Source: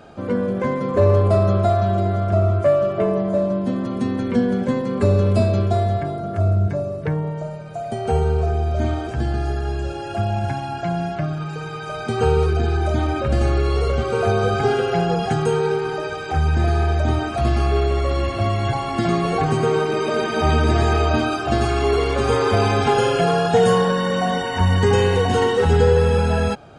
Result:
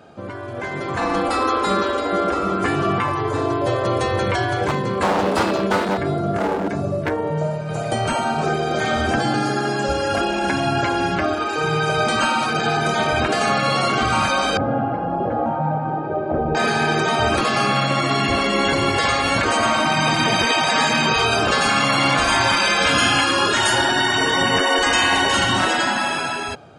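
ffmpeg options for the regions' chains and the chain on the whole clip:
ffmpeg -i in.wav -filter_complex "[0:a]asettb=1/sr,asplit=3[link_01][link_02][link_03];[link_01]atrim=end=4.684[link_04];[link_02]atrim=start=4.68:end=7.69,asetpts=PTS-STARTPTS,afade=type=in:duration=0.004:curve=qsin,afade=type=out:start_time=3.006:duration=0.004:curve=qsin,flanger=delay=5.5:depth=6.1:regen=72:speed=1.3:shape=triangular,aeval=exprs='0.119*(abs(mod(val(0)/0.119+3,4)-2)-1)':channel_layout=same[link_05];[link_03]atrim=start=7.686[link_06];[link_04][link_05]acrossfade=duration=0.004:curve1=hsin:curve2=qsin[link_07];[link_07][link_06]acrossfade=duration=0.004:curve1=qsin:curve2=hsin,asettb=1/sr,asplit=3[link_08][link_09][link_10];[link_08]atrim=end=8.434[link_11];[link_09]atrim=start=8.43:end=10.21,asetpts=PTS-STARTPTS,afade=type=in:duration=0.004:curve=qsin,afade=type=out:start_time=1.776:duration=0.004:curve=qsin,aecho=1:1:3.8:0.53,atrim=end_sample=78498,bandreject=frequency=57.5:width_type=h:width=4,bandreject=frequency=115:width_type=h:width=4,bandreject=frequency=172.5:width_type=h:width=4,bandreject=frequency=230:width_type=h:width=4,bandreject=frequency=287.5:width_type=h:width=4,bandreject=frequency=345:width_type=h:width=4,bandreject=frequency=402.5:width_type=h:width=4,bandreject=frequency=460:width_type=h:width=4,bandreject=frequency=517.5:width_type=h:width=4,bandreject=frequency=575:width_type=h:width=4,bandreject=frequency=632.5:width_type=h:width=4,bandreject=frequency=690:width_type=h:width=4,bandreject=frequency=747.5:width_type=h:width=4,bandreject=frequency=805:width_type=h:width=4,bandreject=frequency=862.5:width_type=h:width=4,bandreject=frequency=920:width_type=h:width=4,bandreject=frequency=977.5:width_type=h:width=4[link_12];[link_10]atrim=start=10.206[link_13];[link_11][link_12]acrossfade=duration=0.004:curve1=hsin:curve2=qsin[link_14];[link_14][link_13]acrossfade=duration=0.004:curve1=qsin:curve2=hsin,asettb=1/sr,asplit=3[link_15][link_16][link_17];[link_15]atrim=end=14.574[link_18];[link_16]atrim=start=14.57:end=16.55,asetpts=PTS-STARTPTS,afade=type=in:duration=0.004:curve=qsin,afade=type=out:start_time=1.976:duration=0.004:curve=qsin,lowpass=frequency=530:width_type=q:width=2.2,lowshelf=frequency=160:gain=-10.5[link_19];[link_17]atrim=start=16.546[link_20];[link_18][link_19]acrossfade=duration=0.004:curve1=hsin:curve2=qsin[link_21];[link_21][link_20]acrossfade=duration=0.004:curve1=qsin:curve2=hsin,highpass=89,afftfilt=real='re*lt(hypot(re,im),0.251)':imag='im*lt(hypot(re,im),0.251)':win_size=1024:overlap=0.75,dynaudnorm=framelen=240:gausssize=7:maxgain=14dB,volume=-2dB" out.wav

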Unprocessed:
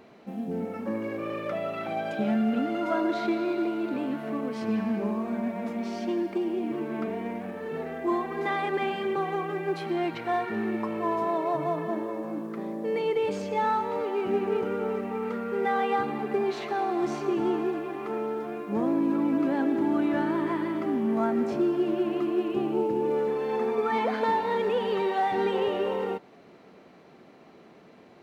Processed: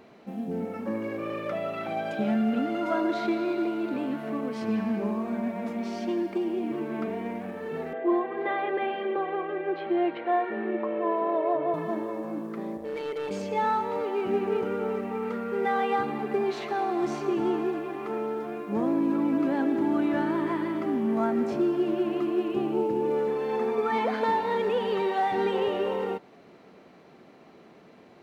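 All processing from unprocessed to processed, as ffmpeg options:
ffmpeg -i in.wav -filter_complex "[0:a]asettb=1/sr,asplit=3[link_01][link_02][link_03];[link_01]atrim=end=7.934[link_04];[link_02]atrim=start=7.93:end=11.74,asetpts=PTS-STARTPTS,afade=type=in:duration=0.004:curve=qsin,afade=type=out:start_time=3.806:duration=0.004:curve=qsin,highpass=320,equalizer=frequency=340:width_type=q:width=4:gain=4,equalizer=frequency=560:width_type=q:width=4:gain=9,equalizer=frequency=890:width_type=q:width=4:gain=-4,equalizer=frequency=1300:width_type=q:width=4:gain=-3,equalizer=frequency=2400:width_type=q:width=4:gain=-4,lowpass=frequency=3100:width=0.5412,lowpass=frequency=3100:width=1.3066,asplit=2[link_05][link_06];[link_06]adelay=14,volume=-11.5dB[link_07];[link_05][link_07]amix=inputs=2:normalize=0,atrim=end_sample=168021[link_08];[link_03]atrim=start=11.736[link_09];[link_04][link_08]acrossfade=duration=0.004:curve1=hsin:curve2=qsin[link_10];[link_10][link_09]acrossfade=duration=0.004:curve1=qsin:curve2=hsin,asettb=1/sr,asplit=3[link_11][link_12][link_13];[link_11]atrim=end=12.774[link_14];[link_12]atrim=start=12.77:end=13.31,asetpts=PTS-STARTPTS,afade=type=in:duration=0.004:curve=qsin,afade=type=out:start_time=0.536:duration=0.004:curve=qsin,lowshelf=frequency=270:gain=-7,tremolo=f=140:d=0.621,asoftclip=type=hard:threshold=-28.5dB[link_15];[link_13]atrim=start=13.306[link_16];[link_14][link_15]acrossfade=duration=0.004:curve1=hsin:curve2=qsin[link_17];[link_17][link_16]acrossfade=duration=0.004:curve1=qsin:curve2=hsin" out.wav

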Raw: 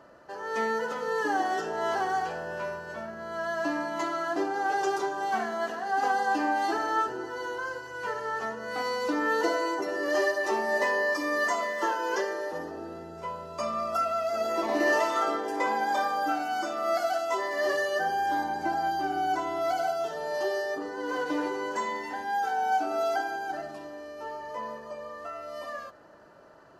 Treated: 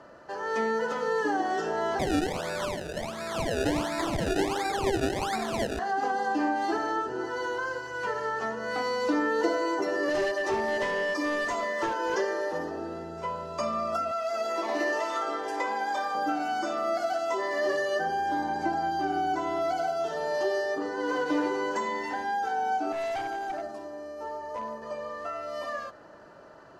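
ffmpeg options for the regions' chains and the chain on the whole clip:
ffmpeg -i in.wav -filter_complex "[0:a]asettb=1/sr,asplit=3[link_01][link_02][link_03];[link_01]atrim=end=1.994[link_04];[link_02]atrim=start=1.99:end=5.79,asetpts=PTS-STARTPTS,afade=type=in:duration=0.004:curve=qsin,afade=type=out:start_time=3.796:duration=0.004:curve=qsin,highpass=56,acrusher=samples=28:mix=1:aa=0.000001:lfo=1:lforange=28:lforate=1.4[link_05];[link_03]atrim=start=5.786[link_06];[link_04][link_05]acrossfade=duration=0.004:curve1=hsin:curve2=qsin[link_07];[link_07][link_06]acrossfade=duration=0.004:curve1=qsin:curve2=hsin,asettb=1/sr,asplit=3[link_08][link_09][link_10];[link_08]atrim=end=10.094[link_11];[link_09]atrim=start=10.09:end=12.15,asetpts=PTS-STARTPTS,afade=type=in:duration=0.004:curve=qsin,afade=type=out:start_time=2.056:duration=0.004:curve=qsin,highpass=frequency=120:width=0.5412,highpass=frequency=120:width=1.3066,asoftclip=type=hard:threshold=-24dB[link_12];[link_10]atrim=start=12.146[link_13];[link_11][link_12]acrossfade=duration=0.004:curve1=hsin:curve2=qsin[link_14];[link_14][link_13]acrossfade=duration=0.004:curve1=qsin:curve2=hsin,asettb=1/sr,asplit=3[link_15][link_16][link_17];[link_15]atrim=end=14.114[link_18];[link_16]atrim=start=14.11:end=16.15,asetpts=PTS-STARTPTS,afade=type=in:duration=0.004:curve=qsin,afade=type=out:start_time=2.036:duration=0.004:curve=qsin,highpass=frequency=630:poles=1,aeval=exprs='sgn(val(0))*max(abs(val(0))-0.00106,0)':channel_layout=same[link_19];[link_17]atrim=start=16.146[link_20];[link_18][link_19]acrossfade=duration=0.004:curve1=hsin:curve2=qsin[link_21];[link_21][link_20]acrossfade=duration=0.004:curve1=qsin:curve2=hsin,asettb=1/sr,asplit=3[link_22][link_23][link_24];[link_22]atrim=end=22.924[link_25];[link_23]atrim=start=22.92:end=24.82,asetpts=PTS-STARTPTS,afade=type=in:duration=0.004:curve=qsin,afade=type=out:start_time=1.896:duration=0.004:curve=qsin,equalizer=frequency=2700:width_type=o:width=1.9:gain=-9.5,bandreject=frequency=50:width_type=h:width=6,bandreject=frequency=100:width_type=h:width=6,bandreject=frequency=150:width_type=h:width=6,bandreject=frequency=200:width_type=h:width=6,bandreject=frequency=250:width_type=h:width=6,bandreject=frequency=300:width_type=h:width=6,bandreject=frequency=350:width_type=h:width=6,bandreject=frequency=400:width_type=h:width=6,bandreject=frequency=450:width_type=h:width=6,bandreject=frequency=500:width_type=h:width=6,asoftclip=type=hard:threshold=-32dB[link_26];[link_24]atrim=start=24.816[link_27];[link_25][link_26]acrossfade=duration=0.004:curve1=hsin:curve2=qsin[link_28];[link_28][link_27]acrossfade=duration=0.004:curve1=qsin:curve2=hsin,lowpass=9100,acrossover=split=490[link_29][link_30];[link_30]acompressor=threshold=-32dB:ratio=6[link_31];[link_29][link_31]amix=inputs=2:normalize=0,volume=3.5dB" out.wav

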